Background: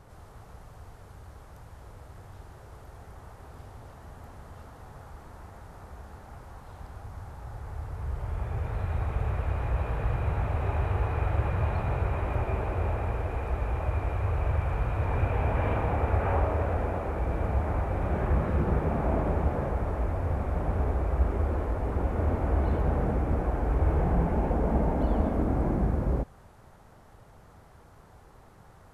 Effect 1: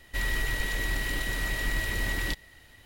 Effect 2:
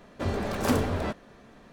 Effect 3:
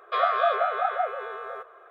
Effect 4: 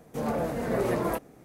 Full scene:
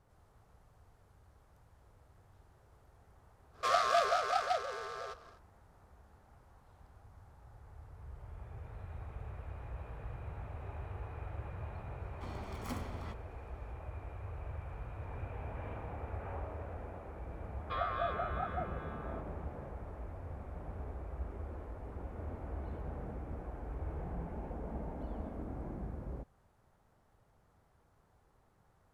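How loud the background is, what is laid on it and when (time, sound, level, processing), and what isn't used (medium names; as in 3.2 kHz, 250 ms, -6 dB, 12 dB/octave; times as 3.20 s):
background -16 dB
3.51 s: add 3 -6.5 dB, fades 0.10 s + delay time shaken by noise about 3 kHz, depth 0.036 ms
12.01 s: add 2 -16 dB + comb filter that takes the minimum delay 0.9 ms
17.58 s: add 3 -13 dB
not used: 1, 4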